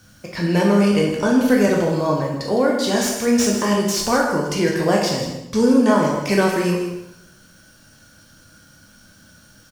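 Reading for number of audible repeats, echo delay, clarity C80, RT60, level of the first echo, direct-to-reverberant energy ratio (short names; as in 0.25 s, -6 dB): 1, 0.159 s, 5.0 dB, 0.80 s, -11.0 dB, -2.0 dB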